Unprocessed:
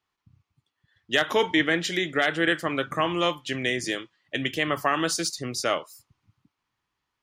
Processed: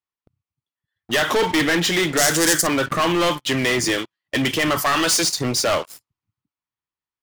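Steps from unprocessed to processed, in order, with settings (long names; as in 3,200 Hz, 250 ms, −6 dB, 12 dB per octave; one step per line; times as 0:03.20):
0:04.78–0:05.24: spectral tilt +2 dB per octave
leveller curve on the samples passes 5
0:02.17–0:02.67: high shelf with overshoot 4,500 Hz +13.5 dB, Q 1.5
level −5.5 dB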